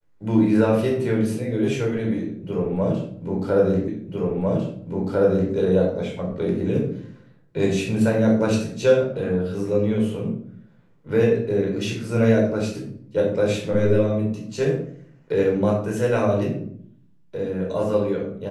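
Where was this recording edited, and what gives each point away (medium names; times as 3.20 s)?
3.88 s: repeat of the last 1.65 s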